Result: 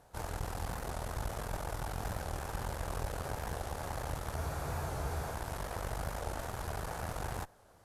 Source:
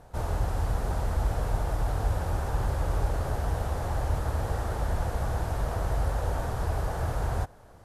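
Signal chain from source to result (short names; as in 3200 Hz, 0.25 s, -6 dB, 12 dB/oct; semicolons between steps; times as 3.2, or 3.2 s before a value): tilt +1.5 dB/oct; added harmonics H 4 -11 dB, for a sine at -19 dBFS; spectral freeze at 4.39, 0.93 s; record warp 45 rpm, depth 100 cents; gain -7 dB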